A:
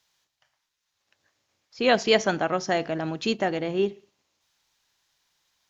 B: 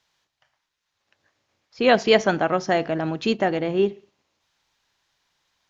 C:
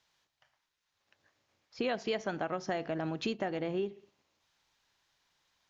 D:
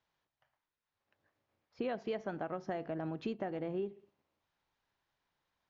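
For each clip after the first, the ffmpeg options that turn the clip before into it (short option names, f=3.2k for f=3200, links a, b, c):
-af "lowpass=f=3.2k:p=1,volume=4dB"
-af "acompressor=threshold=-27dB:ratio=6,volume=-4dB"
-af "lowpass=f=1.2k:p=1,volume=-3dB"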